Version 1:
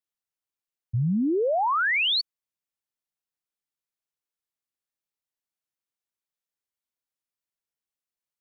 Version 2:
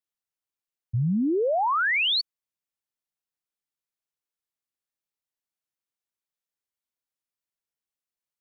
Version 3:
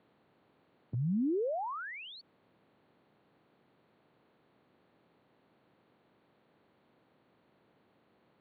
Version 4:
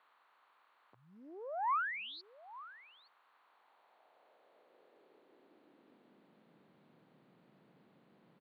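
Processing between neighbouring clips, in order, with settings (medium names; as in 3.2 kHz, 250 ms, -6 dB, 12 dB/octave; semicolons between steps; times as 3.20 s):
no audible change
spectral levelling over time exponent 0.6; peak limiter -27 dBFS, peak gain reduction 8.5 dB; band-pass filter 250 Hz, Q 0.58
high-pass sweep 1.1 kHz -> 160 Hz, 3.33–6.70 s; delay 869 ms -17.5 dB; loudspeaker Doppler distortion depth 0.25 ms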